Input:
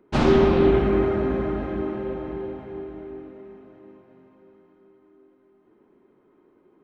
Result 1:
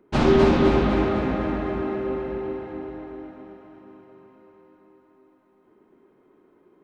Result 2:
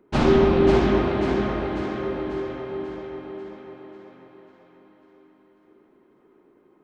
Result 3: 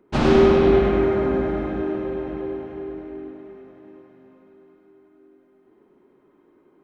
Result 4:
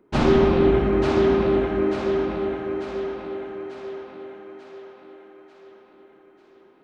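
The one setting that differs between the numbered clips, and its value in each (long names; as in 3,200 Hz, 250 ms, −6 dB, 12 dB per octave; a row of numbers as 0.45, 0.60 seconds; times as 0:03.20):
feedback echo with a high-pass in the loop, delay time: 254, 542, 100, 892 milliseconds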